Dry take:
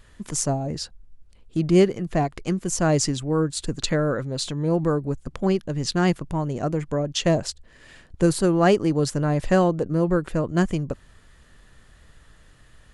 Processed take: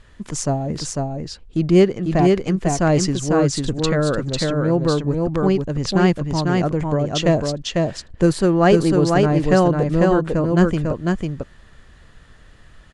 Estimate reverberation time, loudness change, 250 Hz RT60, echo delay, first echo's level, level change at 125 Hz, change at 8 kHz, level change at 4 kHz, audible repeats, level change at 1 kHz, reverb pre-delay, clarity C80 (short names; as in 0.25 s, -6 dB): none, +4.5 dB, none, 0.498 s, -3.0 dB, +5.0 dB, +0.5 dB, +3.5 dB, 1, +5.0 dB, none, none